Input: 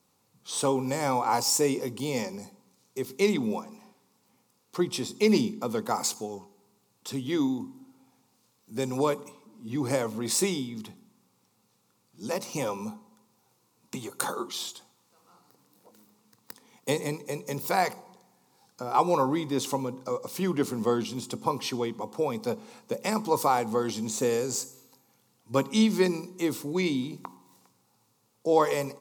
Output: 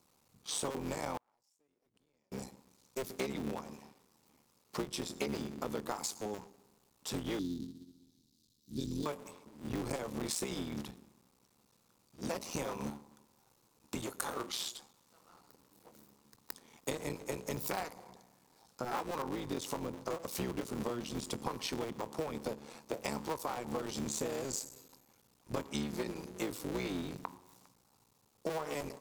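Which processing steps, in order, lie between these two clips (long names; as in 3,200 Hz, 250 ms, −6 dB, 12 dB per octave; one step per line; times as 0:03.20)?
sub-harmonics by changed cycles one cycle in 3, muted
0:07.39–0:09.06: drawn EQ curve 300 Hz 0 dB, 660 Hz −24 dB, 1,200 Hz −23 dB, 2,500 Hz −16 dB, 3,900 Hz +4 dB, 8,000 Hz −5 dB
downward compressor 16 to 1, threshold −33 dBFS, peak gain reduction 16 dB
0:01.17–0:02.32: gate with flip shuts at −32 dBFS, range −40 dB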